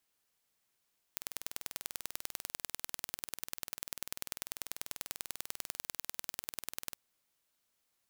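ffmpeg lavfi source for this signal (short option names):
-f lavfi -i "aevalsrc='0.355*eq(mod(n,2172),0)*(0.5+0.5*eq(mod(n,4344),0))':d=5.8:s=44100"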